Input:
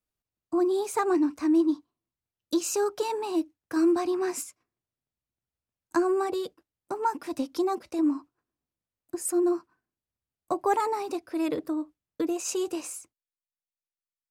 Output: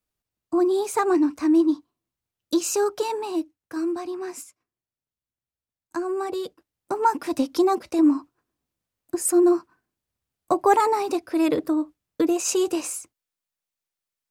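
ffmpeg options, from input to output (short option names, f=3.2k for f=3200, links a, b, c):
-af "volume=15dB,afade=t=out:st=2.89:d=0.96:silence=0.398107,afade=t=in:st=6:d=1.11:silence=0.281838"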